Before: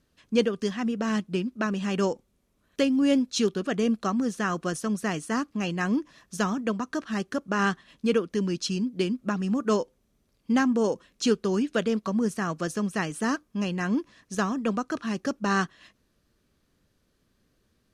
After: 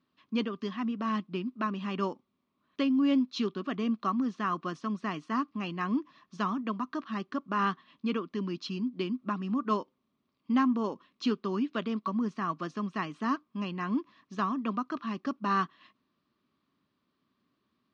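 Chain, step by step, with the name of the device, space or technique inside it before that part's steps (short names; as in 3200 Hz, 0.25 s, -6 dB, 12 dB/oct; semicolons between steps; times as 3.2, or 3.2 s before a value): kitchen radio (speaker cabinet 170–4300 Hz, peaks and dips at 260 Hz +4 dB, 490 Hz -10 dB, 750 Hz -3 dB, 1100 Hz +10 dB, 1600 Hz -5 dB); gain -5 dB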